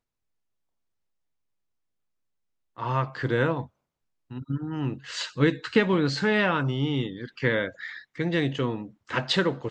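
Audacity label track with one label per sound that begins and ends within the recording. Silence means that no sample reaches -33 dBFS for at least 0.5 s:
2.780000	3.640000	sound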